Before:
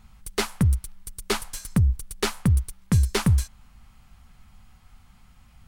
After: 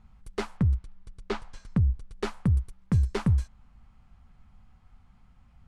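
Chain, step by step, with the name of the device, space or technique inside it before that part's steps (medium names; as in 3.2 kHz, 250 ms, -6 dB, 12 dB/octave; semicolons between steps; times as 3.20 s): through cloth (low-pass 8.5 kHz 12 dB/octave; treble shelf 2.2 kHz -13 dB); 0.57–2.13 s: low-pass 5.8 kHz 12 dB/octave; trim -3.5 dB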